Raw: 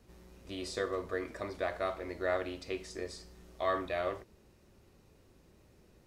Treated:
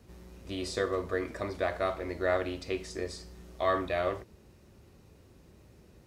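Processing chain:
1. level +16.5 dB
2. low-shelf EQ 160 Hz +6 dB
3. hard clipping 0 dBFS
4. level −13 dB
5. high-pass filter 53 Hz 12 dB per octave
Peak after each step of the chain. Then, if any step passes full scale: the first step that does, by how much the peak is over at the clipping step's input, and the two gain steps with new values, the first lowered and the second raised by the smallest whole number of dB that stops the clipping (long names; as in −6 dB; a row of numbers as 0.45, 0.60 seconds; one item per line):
−2.5, −2.0, −2.0, −15.0, −15.0 dBFS
no step passes full scale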